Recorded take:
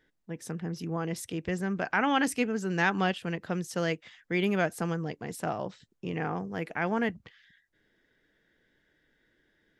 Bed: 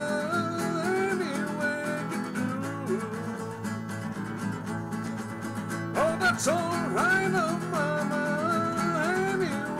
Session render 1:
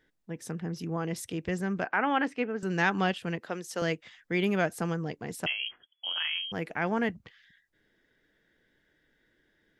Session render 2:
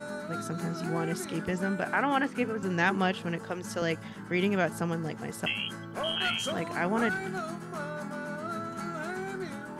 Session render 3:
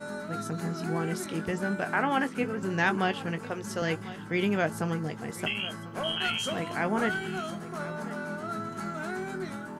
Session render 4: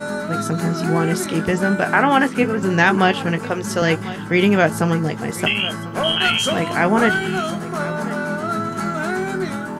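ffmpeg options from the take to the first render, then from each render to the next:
-filter_complex "[0:a]asettb=1/sr,asplit=3[s0][s1][s2];[s0]atrim=end=1.844[s3];[s1]atrim=start=1.84:end=2.63,asetpts=PTS-STARTPTS,afade=t=in:d=0.004:c=qsin,afade=t=out:st=0.786:d=0.004:c=qsin,highpass=270,lowpass=2400[s4];[s2]atrim=start=2.626[s5];[s3][s4]acrossfade=d=0.004:c1=hsin:c2=qsin[s6];[s6][s5]acrossfade=d=0.004:c1=qsin:c2=hsin,asettb=1/sr,asplit=3[s7][s8][s9];[s7]atrim=end=3.394[s10];[s8]atrim=start=3.39:end=3.82,asetpts=PTS-STARTPTS,afade=t=in:d=0.004:c=qsin,afade=t=out:st=0.426:d=0.004:c=qsin,highpass=320[s11];[s9]atrim=start=3.816[s12];[s10][s11]acrossfade=d=0.004:c1=hsin:c2=qsin[s13];[s13][s12]acrossfade=d=0.004:c1=qsin:c2=hsin,asettb=1/sr,asplit=3[s14][s15][s16];[s14]atrim=end=5.464[s17];[s15]atrim=start=5.46:end=6.52,asetpts=PTS-STARTPTS,afade=t=in:d=0.004:c=qsin,afade=t=out:st=1.056:d=0.004:c=qsin,lowpass=f=2900:t=q:w=0.5098,lowpass=f=2900:t=q:w=0.6013,lowpass=f=2900:t=q:w=0.9,lowpass=f=2900:t=q:w=2.563,afreqshift=-3400[s18];[s16]atrim=start=6.516[s19];[s17][s18]acrossfade=d=0.004:c1=hsin:c2=qsin[s20];[s20][s19]acrossfade=d=0.004:c1=qsin:c2=hsin"
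-filter_complex "[1:a]volume=0.355[s0];[0:a][s0]amix=inputs=2:normalize=0"
-filter_complex "[0:a]asplit=2[s0][s1];[s1]adelay=19,volume=0.282[s2];[s0][s2]amix=inputs=2:normalize=0,aecho=1:1:1046:0.158"
-af "volume=3.98,alimiter=limit=0.794:level=0:latency=1"

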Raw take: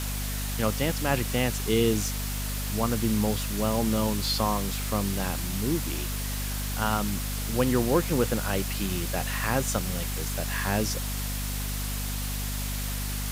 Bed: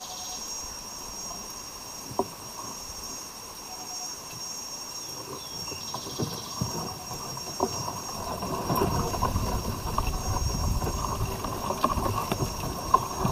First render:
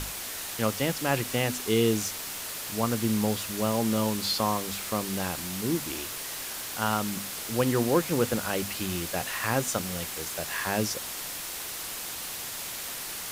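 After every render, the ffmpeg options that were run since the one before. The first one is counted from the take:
-af "bandreject=f=50:t=h:w=6,bandreject=f=100:t=h:w=6,bandreject=f=150:t=h:w=6,bandreject=f=200:t=h:w=6,bandreject=f=250:t=h:w=6"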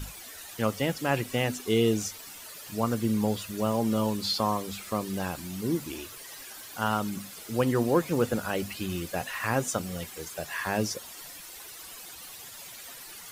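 -af "afftdn=nr=12:nf=-37"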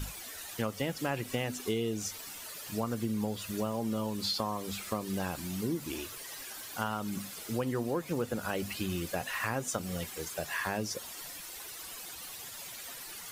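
-af "acompressor=threshold=0.0355:ratio=6"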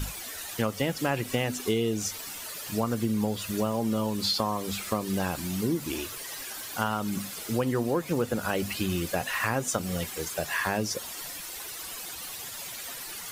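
-af "volume=1.88"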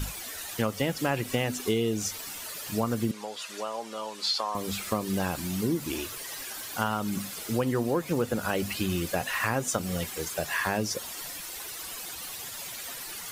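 -filter_complex "[0:a]asettb=1/sr,asplit=3[s0][s1][s2];[s0]atrim=end=3.114[s3];[s1]atrim=start=3.11:end=4.55,asetpts=PTS-STARTPTS,afade=t=in:d=0.004:c=qsin,afade=t=out:st=1.436:d=0.004:c=qsin,highpass=650,lowpass=7600[s4];[s2]atrim=start=4.546[s5];[s3][s4]acrossfade=d=0.004:c1=hsin:c2=qsin[s6];[s6][s5]acrossfade=d=0.004:c1=qsin:c2=hsin"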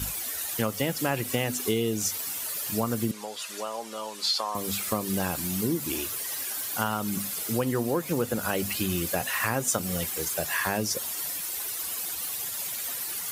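-af "highpass=53,equalizer=f=13000:w=0.56:g=9"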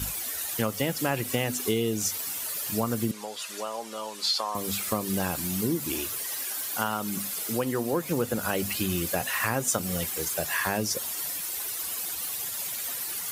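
-filter_complex "[0:a]asettb=1/sr,asplit=3[s0][s1][s2];[s0]atrim=end=6.264[s3];[s1]atrim=start=6.26:end=7.93,asetpts=PTS-STARTPTS,afade=t=in:d=0.004:c=qsin,afade=t=out:st=1.666:d=0.004:c=qsin,highpass=f=170:p=1[s4];[s2]atrim=start=7.926[s5];[s3][s4]acrossfade=d=0.004:c1=hsin:c2=qsin[s6];[s6][s5]acrossfade=d=0.004:c1=qsin:c2=hsin"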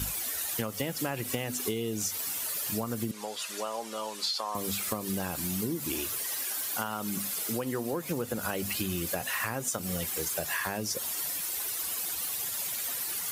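-af "acompressor=threshold=0.0398:ratio=6"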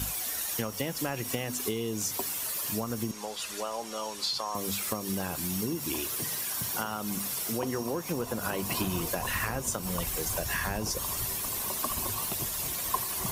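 -filter_complex "[1:a]volume=0.299[s0];[0:a][s0]amix=inputs=2:normalize=0"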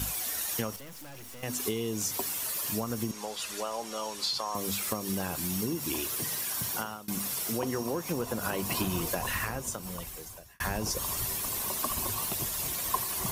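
-filter_complex "[0:a]asettb=1/sr,asplit=3[s0][s1][s2];[s0]atrim=end=0.764[s3];[s1]atrim=start=0.76:end=1.43,asetpts=PTS-STARTPTS,afade=t=in:d=0.004:c=qsin,afade=t=out:st=0.666:d=0.004:c=qsin,aeval=exprs='(tanh(178*val(0)+0.65)-tanh(0.65))/178':c=same[s4];[s2]atrim=start=1.426[s5];[s3][s4]acrossfade=d=0.004:c1=hsin:c2=qsin[s6];[s6][s5]acrossfade=d=0.004:c1=qsin:c2=hsin,asplit=3[s7][s8][s9];[s7]atrim=end=7.08,asetpts=PTS-STARTPTS,afade=t=out:st=6.63:d=0.45:c=qsin:silence=0.0749894[s10];[s8]atrim=start=7.08:end=10.6,asetpts=PTS-STARTPTS,afade=t=in:d=0.004:c=hsin:silence=0.0749894,afade=t=out:st=2.11:d=1.41[s11];[s9]atrim=start=10.6,asetpts=PTS-STARTPTS,afade=t=in:d=0.004:c=hsin[s12];[s10][s11][s12]concat=n=3:v=0:a=1"

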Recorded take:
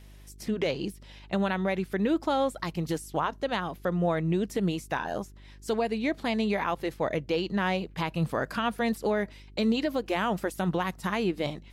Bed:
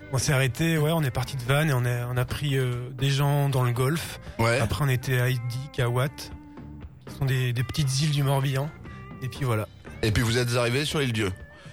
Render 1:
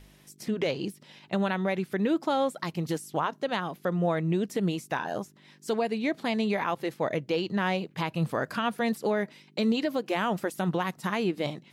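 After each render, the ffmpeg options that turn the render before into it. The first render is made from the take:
-af "bandreject=f=50:t=h:w=4,bandreject=f=100:t=h:w=4"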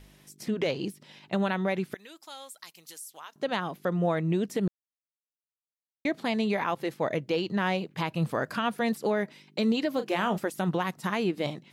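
-filter_complex "[0:a]asettb=1/sr,asplit=3[s0][s1][s2];[s0]atrim=end=1.944[s3];[s1]atrim=start=1.94:end=3.36,asetpts=PTS-STARTPTS,afade=t=in:d=0.004:c=qsin,afade=t=out:st=1.416:d=0.004:c=qsin,aderivative[s4];[s2]atrim=start=3.356[s5];[s3][s4]acrossfade=d=0.004:c1=hsin:c2=qsin[s6];[s6][s5]acrossfade=d=0.004:c1=qsin:c2=hsin,asettb=1/sr,asplit=3[s7][s8][s9];[s7]atrim=end=9.934[s10];[s8]atrim=start=9.93:end=10.38,asetpts=PTS-STARTPTS,afade=t=in:d=0.004:c=qsin,afade=t=out:st=0.446:d=0.004:c=qsin,asplit=2[s11][s12];[s12]adelay=34,volume=0.316[s13];[s11][s13]amix=inputs=2:normalize=0,atrim=end_sample=19845[s14];[s9]atrim=start=10.376[s15];[s10][s14]acrossfade=d=0.004:c1=hsin:c2=qsin[s16];[s16][s15]acrossfade=d=0.004:c1=qsin:c2=hsin,asplit=3[s17][s18][s19];[s17]atrim=end=4.68,asetpts=PTS-STARTPTS,afade=t=out:st=4.676:d=0.004:c=hsin[s20];[s18]atrim=start=4.68:end=6.05,asetpts=PTS-STARTPTS,volume=0[s21];[s19]atrim=start=6.05,asetpts=PTS-STARTPTS,afade=t=in:d=0.004:c=hsin[s22];[s20][s21][s22]concat=n=3:v=0:a=1"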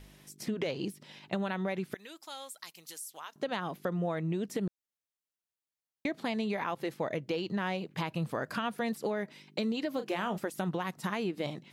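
-af "acompressor=threshold=0.0282:ratio=3"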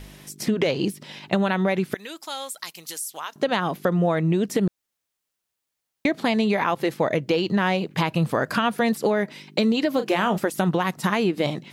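-af "volume=3.76"

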